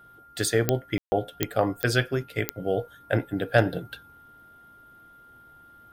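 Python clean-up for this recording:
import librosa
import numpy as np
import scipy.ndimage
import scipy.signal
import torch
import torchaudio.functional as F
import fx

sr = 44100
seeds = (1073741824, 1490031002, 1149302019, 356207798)

y = fx.fix_declick_ar(x, sr, threshold=10.0)
y = fx.notch(y, sr, hz=1400.0, q=30.0)
y = fx.fix_ambience(y, sr, seeds[0], print_start_s=4.52, print_end_s=5.02, start_s=0.98, end_s=1.12)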